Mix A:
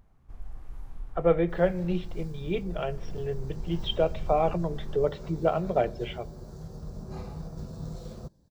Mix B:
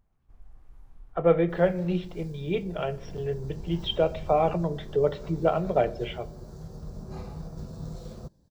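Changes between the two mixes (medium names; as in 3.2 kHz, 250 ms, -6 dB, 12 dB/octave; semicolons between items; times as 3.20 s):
speech: send +6.5 dB; first sound -10.0 dB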